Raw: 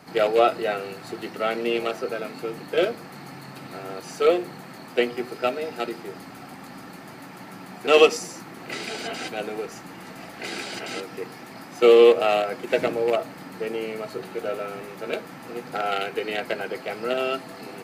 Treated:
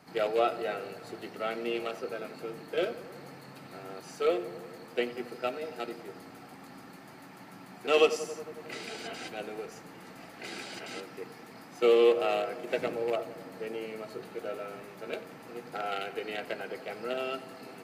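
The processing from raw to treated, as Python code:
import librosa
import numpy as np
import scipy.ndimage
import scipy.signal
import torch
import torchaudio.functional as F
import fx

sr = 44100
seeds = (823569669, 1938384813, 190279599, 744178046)

y = fx.echo_filtered(x, sr, ms=91, feedback_pct=77, hz=3100.0, wet_db=-16)
y = y * librosa.db_to_amplitude(-8.5)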